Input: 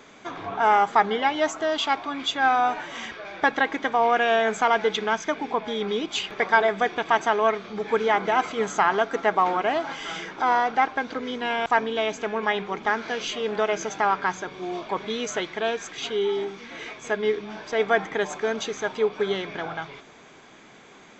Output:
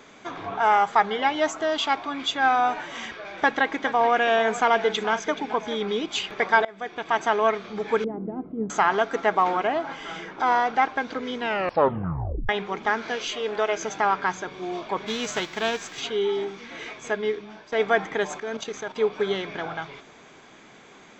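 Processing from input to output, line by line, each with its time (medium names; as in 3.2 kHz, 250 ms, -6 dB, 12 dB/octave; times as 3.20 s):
0.58–1.19 s: peaking EQ 290 Hz -8.5 dB
2.95–5.82 s: delay 427 ms -14 dB
6.65–7.32 s: fade in, from -24 dB
8.04–8.70 s: resonant low-pass 260 Hz, resonance Q 1.6
9.67–10.40 s: treble shelf 2.8 kHz -9 dB
11.43 s: tape stop 1.06 s
13.16–13.83 s: peaking EQ 180 Hz -8.5 dB 0.86 oct
15.06–16.00 s: formants flattened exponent 0.6
17.06–17.72 s: fade out, to -11 dB
18.40–18.96 s: level held to a coarse grid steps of 10 dB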